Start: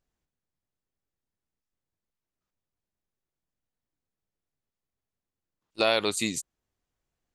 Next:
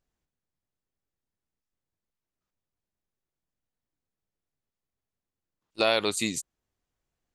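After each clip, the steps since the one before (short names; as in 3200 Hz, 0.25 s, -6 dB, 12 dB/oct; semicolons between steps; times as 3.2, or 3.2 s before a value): nothing audible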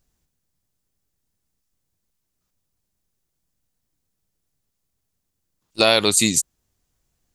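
tone controls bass +6 dB, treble +9 dB; gain +6.5 dB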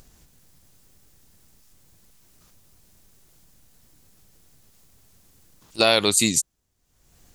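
wow and flutter 26 cents; upward compressor, threshold -35 dBFS; gain -2 dB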